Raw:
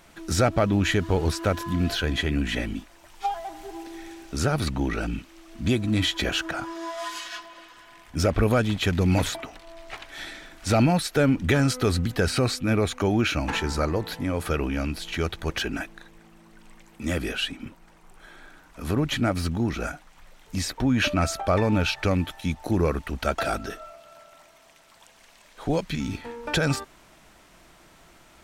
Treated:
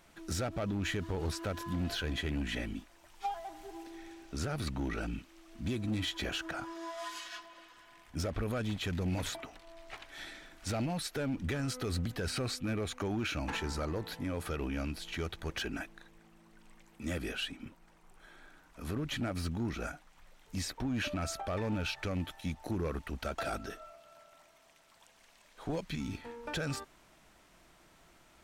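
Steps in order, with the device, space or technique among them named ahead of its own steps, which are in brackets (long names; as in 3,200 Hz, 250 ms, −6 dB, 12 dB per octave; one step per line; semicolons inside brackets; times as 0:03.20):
0:03.90–0:04.44: parametric band 12,000 Hz −4.5 dB 1.4 octaves
limiter into clipper (brickwall limiter −17 dBFS, peak gain reduction 6 dB; hard clipping −20.5 dBFS, distortion −20 dB)
level −8.5 dB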